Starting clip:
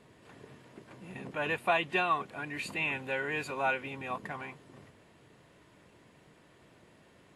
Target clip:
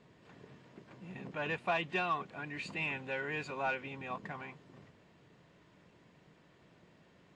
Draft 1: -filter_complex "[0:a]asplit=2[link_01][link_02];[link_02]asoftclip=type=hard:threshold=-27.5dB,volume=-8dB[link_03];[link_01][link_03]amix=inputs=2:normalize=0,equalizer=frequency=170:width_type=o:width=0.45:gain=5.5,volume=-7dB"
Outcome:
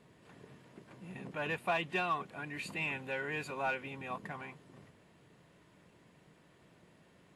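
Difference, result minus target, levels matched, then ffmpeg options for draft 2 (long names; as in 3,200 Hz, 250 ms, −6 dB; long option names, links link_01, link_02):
8,000 Hz band +4.5 dB
-filter_complex "[0:a]asplit=2[link_01][link_02];[link_02]asoftclip=type=hard:threshold=-27.5dB,volume=-8dB[link_03];[link_01][link_03]amix=inputs=2:normalize=0,lowpass=frequency=6900:width=0.5412,lowpass=frequency=6900:width=1.3066,equalizer=frequency=170:width_type=o:width=0.45:gain=5.5,volume=-7dB"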